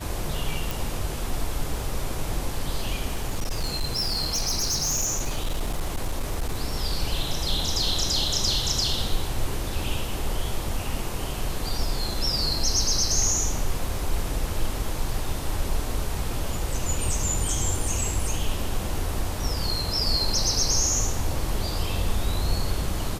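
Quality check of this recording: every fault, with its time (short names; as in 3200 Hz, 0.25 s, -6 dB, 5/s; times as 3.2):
0.71 pop
3.06–6.62 clipped -21.5 dBFS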